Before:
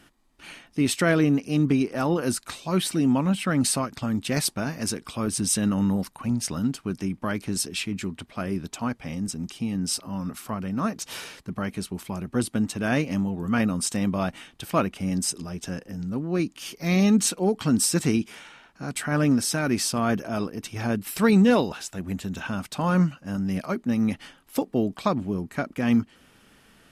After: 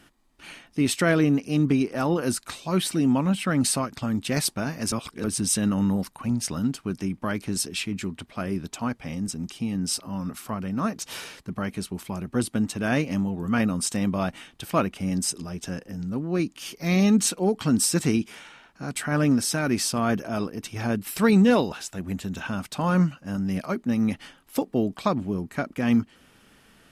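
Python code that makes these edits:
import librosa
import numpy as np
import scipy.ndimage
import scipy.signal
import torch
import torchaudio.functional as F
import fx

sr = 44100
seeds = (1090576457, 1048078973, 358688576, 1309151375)

y = fx.edit(x, sr, fx.reverse_span(start_s=4.92, length_s=0.32), tone=tone)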